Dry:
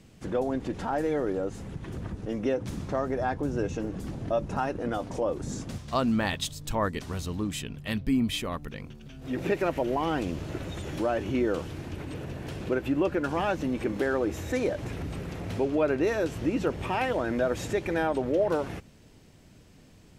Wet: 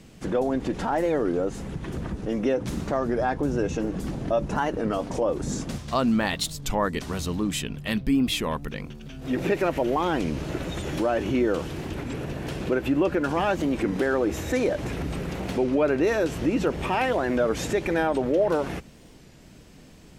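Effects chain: bell 100 Hz -13.5 dB 0.25 oct; in parallel at 0 dB: limiter -24.5 dBFS, peak gain reduction 11.5 dB; on the sum: record warp 33 1/3 rpm, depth 160 cents

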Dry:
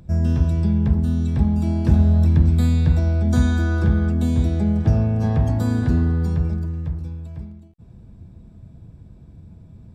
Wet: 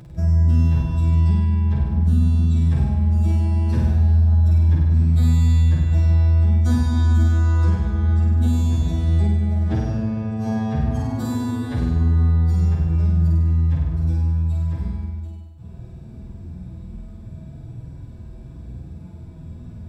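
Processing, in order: time stretch by phase-locked vocoder 2×; notch 470 Hz, Q 14; compressor 6:1, threshold -26 dBFS, peak gain reduction 15.5 dB; notches 50/100/150/200 Hz; flutter echo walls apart 8.5 m, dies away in 1.1 s; gain +6 dB

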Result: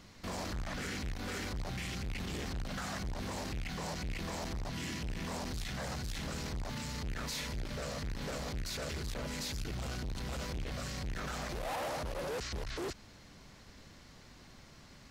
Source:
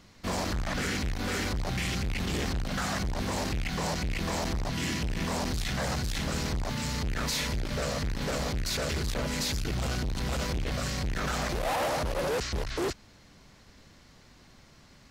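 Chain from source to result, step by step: limiter -32 dBFS, peak gain reduction 9 dB

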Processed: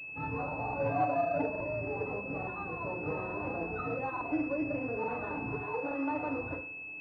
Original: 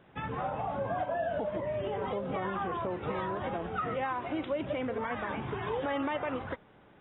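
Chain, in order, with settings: 0.79–1.43 comb 7 ms, depth 87%; 2.04–2.87 bell 690 Hz -3.5 dB 2.4 oct; 5.58–6.13 HPF 440 Hz 6 dB/oct; FDN reverb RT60 0.46 s, low-frequency decay 1.05×, high-frequency decay 0.8×, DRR -1.5 dB; crackling interface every 0.87 s, samples 2048, repeat, from 0.64; pulse-width modulation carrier 2600 Hz; gain -5 dB

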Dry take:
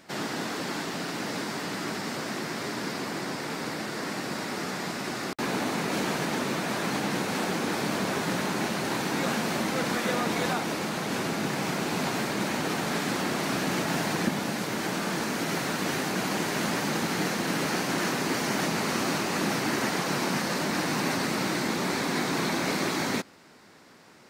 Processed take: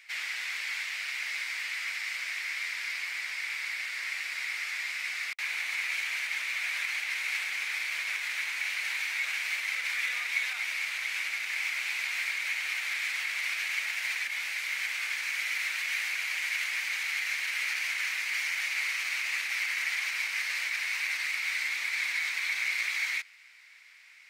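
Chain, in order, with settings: limiter -20.5 dBFS, peak gain reduction 6 dB; resonant high-pass 2200 Hz, resonance Q 5.9; gain -4.5 dB

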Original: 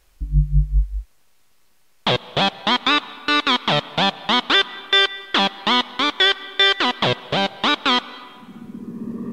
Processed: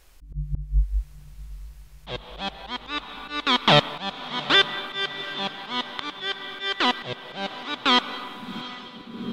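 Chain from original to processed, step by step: auto swell 0.498 s; diffused feedback echo 0.764 s, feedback 49%, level -15.5 dB; gain +3.5 dB

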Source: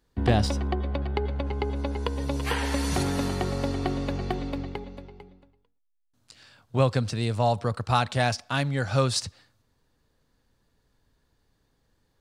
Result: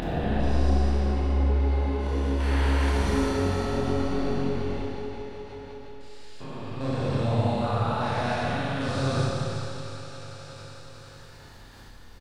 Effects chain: stepped spectrum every 0.4 s; chorus voices 4, 0.91 Hz, delay 28 ms, depth 4.8 ms; on a send: feedback echo 0.362 s, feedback 47%, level -13 dB; on the sum: Schroeder reverb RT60 2.3 s, combs from 26 ms, DRR -6.5 dB; upward compressor, threshold -33 dBFS; high shelf 4100 Hz -10 dB; notches 60/120 Hz; mismatched tape noise reduction encoder only

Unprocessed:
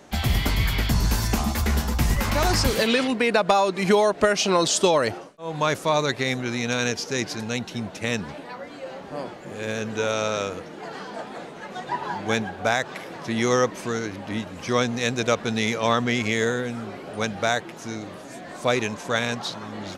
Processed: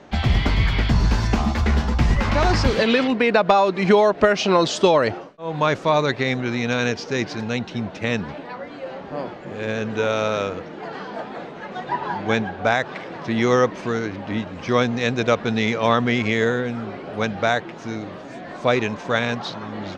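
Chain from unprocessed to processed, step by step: air absorption 160 m; gain +4 dB

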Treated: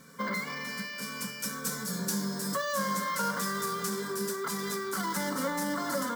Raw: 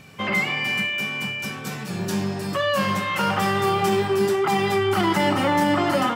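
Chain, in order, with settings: self-modulated delay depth 0.052 ms; tone controls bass -5 dB, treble +3 dB, from 1.01 s treble +11 dB; compressor 3:1, threshold -25 dBFS, peak gain reduction 7 dB; fixed phaser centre 530 Hz, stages 8; notch comb 620 Hz; careless resampling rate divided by 2×, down none, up hold

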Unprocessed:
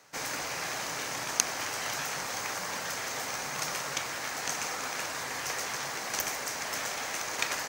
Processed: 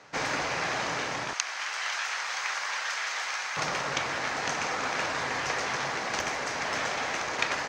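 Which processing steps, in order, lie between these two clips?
1.33–3.57 HPF 1200 Hz 12 dB/oct; vocal rider 0.5 s; air absorption 140 m; gain +6.5 dB

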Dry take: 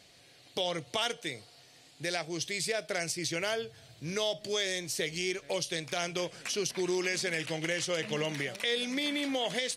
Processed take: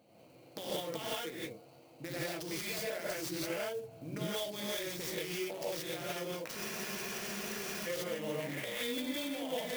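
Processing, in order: Wiener smoothing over 25 samples; HPF 170 Hz 12 dB/oct; notch 410 Hz, Q 12; compressor 6:1, threshold -43 dBFS, peak gain reduction 15.5 dB; non-linear reverb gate 0.2 s rising, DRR -8 dB; spectral freeze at 6.6, 1.26 s; clock jitter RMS 0.029 ms

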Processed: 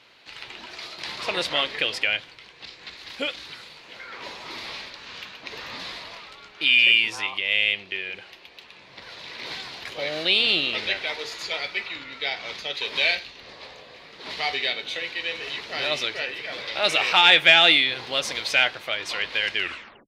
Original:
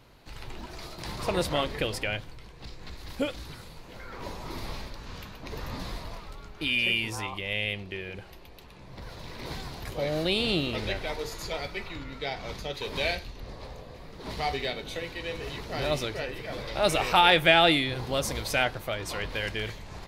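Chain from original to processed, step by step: tape stop at the end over 0.51 s; overdrive pedal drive 10 dB, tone 2400 Hz, clips at -5 dBFS; weighting filter D; gain -3 dB

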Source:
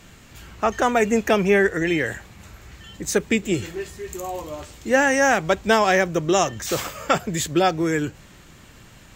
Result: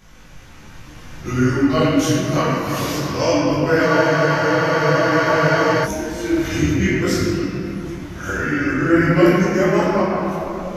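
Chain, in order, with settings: whole clip reversed; recorder AGC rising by 8.3 dB/s; notch 500 Hz, Q 12; varispeed -15%; shoebox room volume 140 m³, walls hard, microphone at 0.94 m; spectral freeze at 3.87, 1.98 s; detuned doubles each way 19 cents; gain -1.5 dB

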